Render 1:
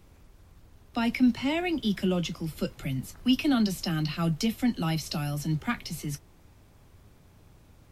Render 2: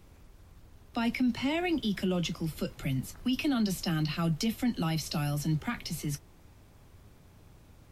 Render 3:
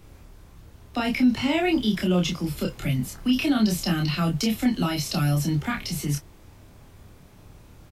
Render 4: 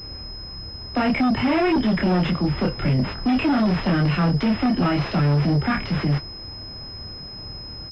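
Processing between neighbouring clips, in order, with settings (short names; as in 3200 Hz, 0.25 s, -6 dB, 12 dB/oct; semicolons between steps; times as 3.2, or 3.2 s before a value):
limiter -21.5 dBFS, peak gain reduction 8.5 dB
doubler 28 ms -2.5 dB; gain +5 dB
added harmonics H 5 -8 dB, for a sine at -11.5 dBFS; soft clip -12.5 dBFS, distortion -24 dB; pulse-width modulation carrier 5100 Hz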